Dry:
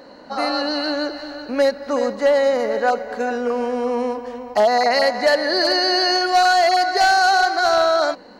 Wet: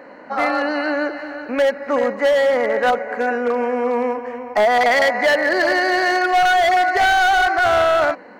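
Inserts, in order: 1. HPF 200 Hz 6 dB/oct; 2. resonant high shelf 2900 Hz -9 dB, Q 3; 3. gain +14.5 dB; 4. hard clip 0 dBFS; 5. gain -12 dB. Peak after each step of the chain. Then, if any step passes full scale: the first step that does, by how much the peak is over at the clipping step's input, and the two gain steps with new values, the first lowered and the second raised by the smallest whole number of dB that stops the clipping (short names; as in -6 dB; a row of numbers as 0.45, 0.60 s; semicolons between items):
-7.5, -5.5, +9.0, 0.0, -12.0 dBFS; step 3, 9.0 dB; step 3 +5.5 dB, step 5 -3 dB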